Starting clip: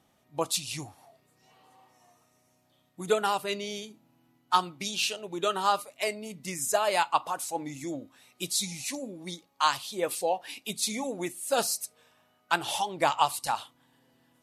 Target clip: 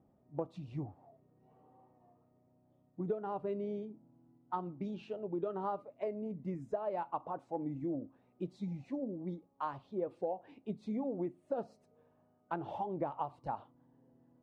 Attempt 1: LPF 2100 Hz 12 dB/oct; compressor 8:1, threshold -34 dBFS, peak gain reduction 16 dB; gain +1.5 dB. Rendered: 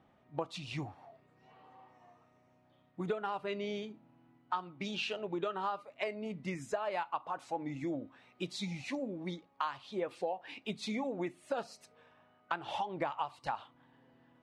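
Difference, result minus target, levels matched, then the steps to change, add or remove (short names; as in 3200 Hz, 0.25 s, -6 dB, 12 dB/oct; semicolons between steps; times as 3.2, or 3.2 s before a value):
2000 Hz band +13.0 dB
change: LPF 540 Hz 12 dB/oct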